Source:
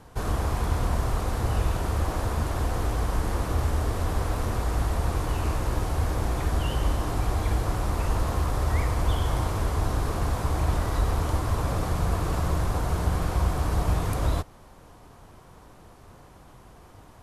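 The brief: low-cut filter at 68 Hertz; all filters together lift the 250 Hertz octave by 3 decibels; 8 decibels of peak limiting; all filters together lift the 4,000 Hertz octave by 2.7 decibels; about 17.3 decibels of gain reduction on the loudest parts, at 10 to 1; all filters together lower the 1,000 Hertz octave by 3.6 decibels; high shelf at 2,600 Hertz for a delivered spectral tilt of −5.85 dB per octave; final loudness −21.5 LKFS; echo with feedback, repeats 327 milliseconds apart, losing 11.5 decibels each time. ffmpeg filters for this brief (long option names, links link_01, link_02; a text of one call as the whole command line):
ffmpeg -i in.wav -af "highpass=68,equalizer=frequency=250:width_type=o:gain=4.5,equalizer=frequency=1000:width_type=o:gain=-4.5,highshelf=frequency=2600:gain=-5,equalizer=frequency=4000:width_type=o:gain=8,acompressor=threshold=-40dB:ratio=10,alimiter=level_in=15dB:limit=-24dB:level=0:latency=1,volume=-15dB,aecho=1:1:327|654|981:0.266|0.0718|0.0194,volume=27dB" out.wav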